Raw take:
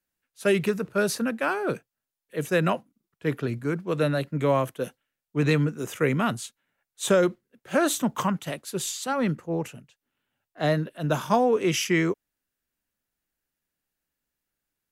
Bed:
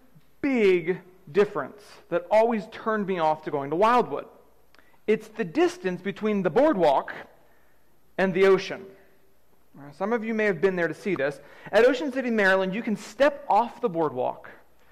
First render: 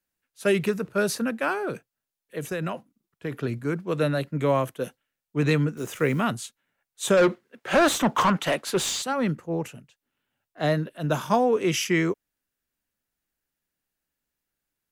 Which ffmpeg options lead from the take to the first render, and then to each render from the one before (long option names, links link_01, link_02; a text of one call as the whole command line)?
ffmpeg -i in.wav -filter_complex "[0:a]asettb=1/sr,asplit=3[link_01][link_02][link_03];[link_01]atrim=end=1.644[link_04];[link_02]atrim=start=1.64:end=3.39,asetpts=PTS-STARTPTS,afade=type=in:duration=0.004:curve=qsin,afade=type=out:start_time=1.746:duration=0.004:curve=qsin,acompressor=threshold=-25dB:ratio=6:attack=3.2:release=140:knee=1:detection=peak[link_05];[link_03]atrim=start=3.386[link_06];[link_04][link_05]acrossfade=duration=0.004:curve1=hsin:curve2=qsin[link_07];[link_07][link_06]acrossfade=duration=0.004:curve1=qsin:curve2=hsin,asettb=1/sr,asplit=3[link_08][link_09][link_10];[link_08]atrim=end=5.774[link_11];[link_09]atrim=start=5.77:end=6.21,asetpts=PTS-STARTPTS,afade=type=in:duration=0.004:curve=qsin,afade=type=out:start_time=0.436:duration=0.004:curve=qsin,acrusher=bits=9:dc=4:mix=0:aa=0.000001[link_12];[link_10]atrim=start=6.206[link_13];[link_11][link_12]acrossfade=duration=0.004:curve1=hsin:curve2=qsin[link_14];[link_14][link_13]acrossfade=duration=0.004:curve1=qsin:curve2=hsin,asplit=3[link_15][link_16][link_17];[link_15]afade=type=out:start_time=7.16:duration=0.02[link_18];[link_16]asplit=2[link_19][link_20];[link_20]highpass=frequency=720:poles=1,volume=22dB,asoftclip=type=tanh:threshold=-11.5dB[link_21];[link_19][link_21]amix=inputs=2:normalize=0,lowpass=frequency=2400:poles=1,volume=-6dB,afade=type=in:start_time=7.16:duration=0.02,afade=type=out:start_time=9.01:duration=0.02[link_22];[link_17]afade=type=in:start_time=9.01:duration=0.02[link_23];[link_18][link_22][link_23]amix=inputs=3:normalize=0" out.wav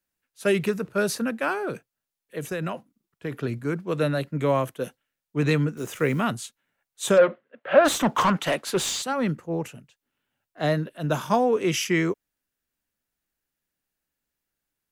ffmpeg -i in.wav -filter_complex "[0:a]asplit=3[link_01][link_02][link_03];[link_01]afade=type=out:start_time=7.17:duration=0.02[link_04];[link_02]highpass=170,equalizer=frequency=190:width_type=q:width=4:gain=-6,equalizer=frequency=360:width_type=q:width=4:gain=-9,equalizer=frequency=580:width_type=q:width=4:gain=9,equalizer=frequency=890:width_type=q:width=4:gain=-4,equalizer=frequency=2300:width_type=q:width=4:gain=-4,lowpass=frequency=2900:width=0.5412,lowpass=frequency=2900:width=1.3066,afade=type=in:start_time=7.17:duration=0.02,afade=type=out:start_time=7.84:duration=0.02[link_05];[link_03]afade=type=in:start_time=7.84:duration=0.02[link_06];[link_04][link_05][link_06]amix=inputs=3:normalize=0" out.wav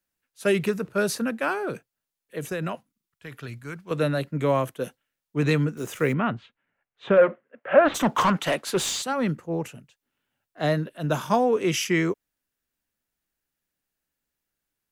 ffmpeg -i in.wav -filter_complex "[0:a]asettb=1/sr,asplit=3[link_01][link_02][link_03];[link_01]atrim=end=2.754[link_04];[link_02]atrim=start=2.75:end=3.91,asetpts=PTS-STARTPTS,afade=type=in:duration=0.004:curve=qsin,afade=type=out:start_time=1.156:duration=0.004:curve=qsin,equalizer=frequency=330:width=0.45:gain=-13[link_05];[link_03]atrim=start=3.906[link_06];[link_04][link_05]acrossfade=duration=0.004:curve1=hsin:curve2=qsin[link_07];[link_07][link_06]acrossfade=duration=0.004:curve1=qsin:curve2=hsin,asplit=3[link_08][link_09][link_10];[link_08]afade=type=out:start_time=6.12:duration=0.02[link_11];[link_09]lowpass=frequency=2700:width=0.5412,lowpass=frequency=2700:width=1.3066,afade=type=in:start_time=6.12:duration=0.02,afade=type=out:start_time=7.94:duration=0.02[link_12];[link_10]afade=type=in:start_time=7.94:duration=0.02[link_13];[link_11][link_12][link_13]amix=inputs=3:normalize=0" out.wav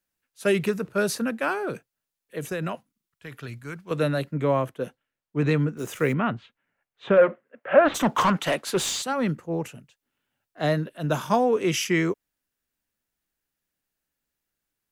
ffmpeg -i in.wav -filter_complex "[0:a]asettb=1/sr,asplit=3[link_01][link_02][link_03];[link_01]atrim=end=4.344[link_04];[link_02]atrim=start=4.34:end=5.79,asetpts=PTS-STARTPTS,afade=type=in:duration=0.004:curve=qsin,afade=type=out:start_time=1.446:duration=0.004:curve=qsin,highshelf=frequency=3800:gain=-10.5[link_05];[link_03]atrim=start=5.786[link_06];[link_04][link_05]acrossfade=duration=0.004:curve1=hsin:curve2=qsin[link_07];[link_07][link_06]acrossfade=duration=0.004:curve1=qsin:curve2=hsin" out.wav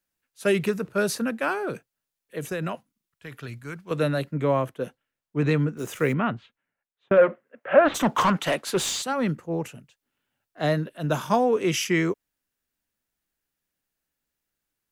ffmpeg -i in.wav -filter_complex "[0:a]asplit=2[link_01][link_02];[link_01]atrim=end=7.11,asetpts=PTS-STARTPTS,afade=type=out:start_time=6.25:duration=0.86[link_03];[link_02]atrim=start=7.11,asetpts=PTS-STARTPTS,afade=type=in:duration=0.004:curve=hsin[link_04];[link_03][link_04]concat=n=2:v=0:a=1" out.wav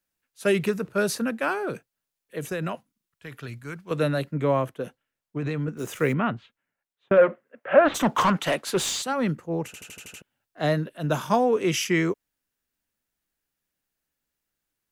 ffmpeg -i in.wav -filter_complex "[0:a]asettb=1/sr,asplit=3[link_01][link_02][link_03];[link_01]atrim=end=4.804[link_04];[link_02]atrim=start=4.8:end=5.68,asetpts=PTS-STARTPTS,afade=type=in:duration=0.004:curve=qsin,afade=type=out:start_time=0.876:duration=0.004:curve=qsin,acompressor=threshold=-24dB:ratio=6:attack=3.2:release=140:knee=1:detection=peak[link_05];[link_03]atrim=start=5.676[link_06];[link_04][link_05]acrossfade=duration=0.004:curve1=hsin:curve2=qsin[link_07];[link_07][link_06]acrossfade=duration=0.004:curve1=qsin:curve2=hsin,asplit=8[link_08][link_09][link_10][link_11][link_12][link_13][link_14][link_15];[link_08]atrim=end=9.742[link_16];[link_09]atrim=start=9.658:end=9.742[link_17];[link_10]atrim=start=9.658:end=9.742[link_18];[link_11]atrim=start=9.658:end=9.742[link_19];[link_12]atrim=start=9.658:end=9.742[link_20];[link_13]atrim=start=9.658:end=9.742[link_21];[link_14]atrim=start=9.658:end=9.742[link_22];[link_15]atrim=start=10.218[link_23];[link_16][link_17]acrossfade=duration=0.004:curve1=hsin:curve2=hsin[link_24];[link_24][link_18]acrossfade=duration=0.004:curve1=hsin:curve2=hsin[link_25];[link_25][link_19]acrossfade=duration=0.004:curve1=hsin:curve2=hsin[link_26];[link_26][link_20]acrossfade=duration=0.004:curve1=hsin:curve2=hsin[link_27];[link_27][link_21]acrossfade=duration=0.004:curve1=hsin:curve2=hsin[link_28];[link_28][link_22]acrossfade=duration=0.004:curve1=hsin:curve2=hsin[link_29];[link_29][link_23]acrossfade=duration=0.004:curve1=hsin:curve2=hsin" out.wav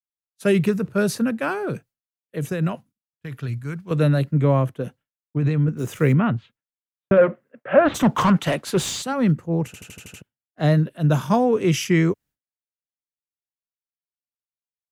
ffmpeg -i in.wav -af "equalizer=frequency=110:width=0.59:gain=12,agate=range=-33dB:threshold=-43dB:ratio=3:detection=peak" out.wav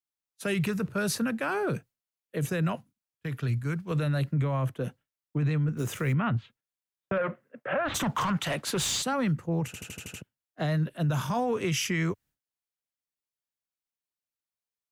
ffmpeg -i in.wav -filter_complex "[0:a]acrossover=split=140|740|1800[link_01][link_02][link_03][link_04];[link_02]acompressor=threshold=-28dB:ratio=6[link_05];[link_01][link_05][link_03][link_04]amix=inputs=4:normalize=0,alimiter=limit=-20.5dB:level=0:latency=1:release=28" out.wav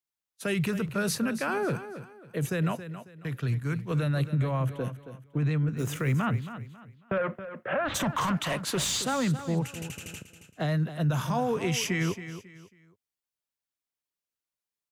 ffmpeg -i in.wav -af "aecho=1:1:273|546|819:0.251|0.0779|0.0241" out.wav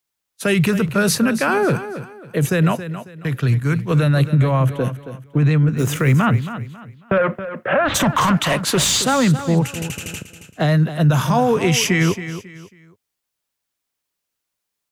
ffmpeg -i in.wav -af "volume=11.5dB" out.wav